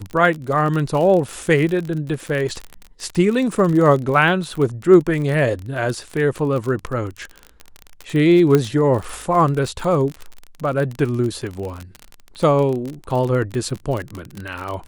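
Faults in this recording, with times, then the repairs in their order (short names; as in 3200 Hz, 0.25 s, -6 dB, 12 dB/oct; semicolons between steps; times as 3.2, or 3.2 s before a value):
crackle 38/s -23 dBFS
8.55 pop -4 dBFS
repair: de-click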